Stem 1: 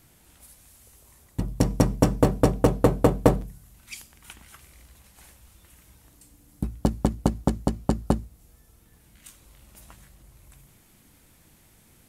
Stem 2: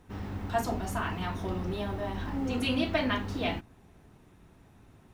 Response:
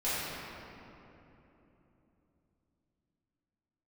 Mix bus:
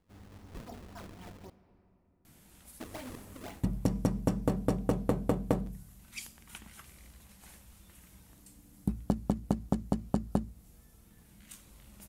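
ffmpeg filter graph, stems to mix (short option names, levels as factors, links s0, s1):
-filter_complex "[0:a]equalizer=f=200:w=3.1:g=8,acompressor=threshold=0.0794:ratio=6,adelay=2250,volume=0.708[s0];[1:a]acrusher=samples=34:mix=1:aa=0.000001:lfo=1:lforange=54.4:lforate=3.9,volume=0.168,asplit=3[s1][s2][s3];[s1]atrim=end=1.5,asetpts=PTS-STARTPTS,afade=t=out:st=1.496:d=0.004:c=hsin[s4];[s2]atrim=start=1.5:end=2.8,asetpts=PTS-STARTPTS,volume=0[s5];[s3]atrim=start=2.8,asetpts=PTS-STARTPTS,afade=t=in:d=0.004:c=hsin[s6];[s4][s5][s6]concat=n=3:v=0:a=1,asplit=2[s7][s8];[s8]volume=0.0708[s9];[2:a]atrim=start_sample=2205[s10];[s9][s10]afir=irnorm=-1:irlink=0[s11];[s0][s7][s11]amix=inputs=3:normalize=0"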